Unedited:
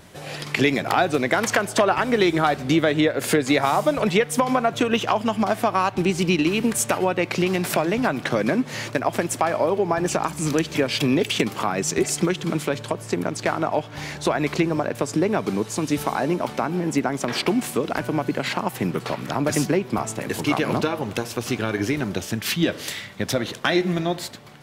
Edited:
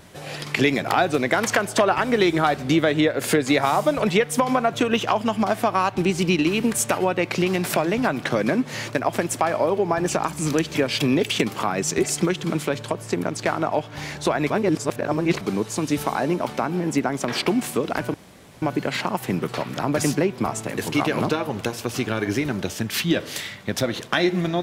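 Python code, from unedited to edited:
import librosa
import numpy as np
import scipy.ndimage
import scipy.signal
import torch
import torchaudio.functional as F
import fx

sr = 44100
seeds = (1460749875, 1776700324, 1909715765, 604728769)

y = fx.edit(x, sr, fx.reverse_span(start_s=14.5, length_s=0.91),
    fx.insert_room_tone(at_s=18.14, length_s=0.48), tone=tone)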